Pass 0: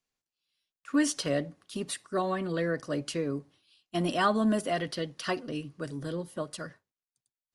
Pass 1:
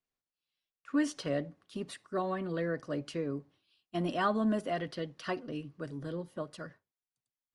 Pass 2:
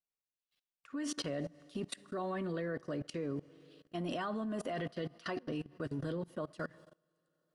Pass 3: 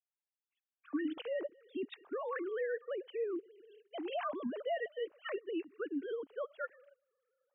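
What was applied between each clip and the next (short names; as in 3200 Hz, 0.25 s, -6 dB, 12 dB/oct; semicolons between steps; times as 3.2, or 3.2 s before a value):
LPF 2600 Hz 6 dB/oct; gain -3.5 dB
Schroeder reverb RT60 2.6 s, combs from 27 ms, DRR 19.5 dB; level quantiser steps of 22 dB; gain +7 dB
sine-wave speech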